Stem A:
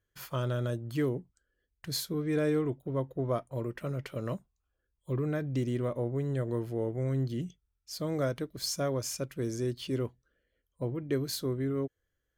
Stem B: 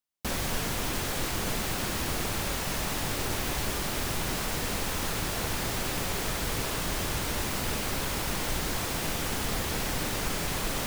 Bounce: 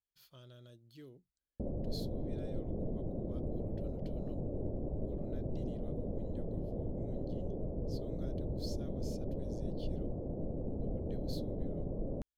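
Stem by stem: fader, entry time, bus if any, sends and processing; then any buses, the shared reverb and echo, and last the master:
-18.5 dB, 0.00 s, no send, graphic EQ 125/250/500/1000/2000/4000/8000 Hz -5/-3/-4/-9/-7/+10/-5 dB
-3.5 dB, 1.35 s, no send, elliptic low-pass 590 Hz, stop band 80 dB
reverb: off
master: dry

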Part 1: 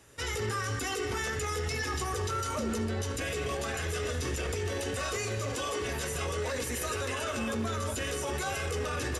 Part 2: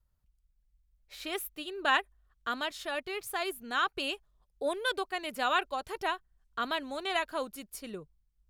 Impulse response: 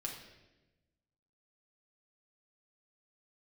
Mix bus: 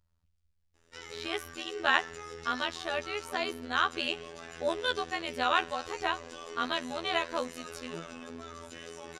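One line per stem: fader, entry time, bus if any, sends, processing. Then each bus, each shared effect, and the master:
-9.0 dB, 0.75 s, no send, HPF 220 Hz 12 dB/oct
+2.5 dB, 0.00 s, send -15 dB, low shelf 180 Hz -8.5 dB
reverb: on, RT60 1.1 s, pre-delay 5 ms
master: LPF 5700 Hz 12 dB/oct; tone controls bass +6 dB, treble +3 dB; robotiser 83.3 Hz

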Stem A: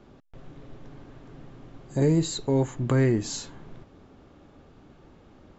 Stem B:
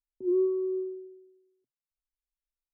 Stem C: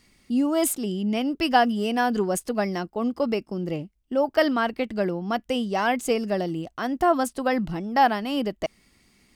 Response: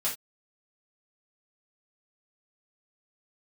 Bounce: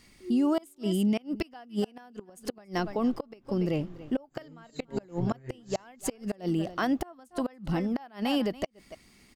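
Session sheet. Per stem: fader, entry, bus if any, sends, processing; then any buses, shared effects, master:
-1.5 dB, 2.40 s, no send, echo send -14 dB, chorus voices 4, 0.41 Hz, delay 29 ms, depth 3.8 ms
-11.5 dB, 0.00 s, no send, no echo send, reverb removal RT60 0.51 s
+2.0 dB, 0.00 s, no send, echo send -20 dB, dry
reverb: off
echo: echo 0.285 s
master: flipped gate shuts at -13 dBFS, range -31 dB; limiter -19 dBFS, peak gain reduction 7 dB

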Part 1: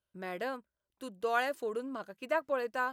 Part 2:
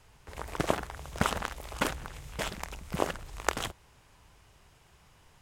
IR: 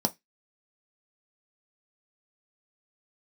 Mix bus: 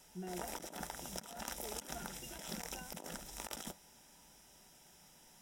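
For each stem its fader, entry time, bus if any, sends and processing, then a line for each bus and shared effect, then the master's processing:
+1.0 dB, 0.00 s, no send, compressor 4:1, threshold -38 dBFS, peak gain reduction 11.5 dB; octave resonator F, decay 0.13 s
-1.5 dB, 0.00 s, send -8 dB, pre-emphasis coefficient 0.8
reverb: on, RT60 0.15 s, pre-delay 3 ms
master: negative-ratio compressor -46 dBFS, ratio -1

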